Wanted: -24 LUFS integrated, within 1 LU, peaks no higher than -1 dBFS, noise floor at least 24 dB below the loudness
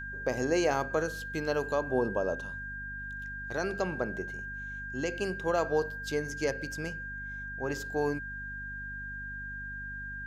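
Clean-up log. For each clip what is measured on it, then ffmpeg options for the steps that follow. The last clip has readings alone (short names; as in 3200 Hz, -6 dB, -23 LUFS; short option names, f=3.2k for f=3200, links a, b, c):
hum 50 Hz; harmonics up to 250 Hz; hum level -43 dBFS; steady tone 1600 Hz; tone level -38 dBFS; loudness -33.5 LUFS; peak -14.5 dBFS; loudness target -24.0 LUFS
-> -af "bandreject=f=50:t=h:w=4,bandreject=f=100:t=h:w=4,bandreject=f=150:t=h:w=4,bandreject=f=200:t=h:w=4,bandreject=f=250:t=h:w=4"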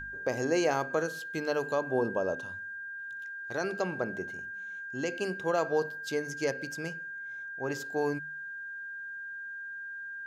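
hum none; steady tone 1600 Hz; tone level -38 dBFS
-> -af "bandreject=f=1.6k:w=30"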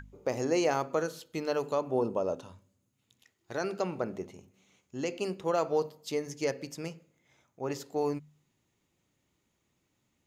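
steady tone none; loudness -33.0 LUFS; peak -15.5 dBFS; loudness target -24.0 LUFS
-> -af "volume=9dB"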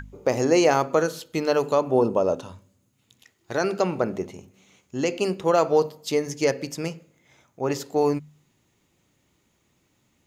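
loudness -24.0 LUFS; peak -6.5 dBFS; noise floor -68 dBFS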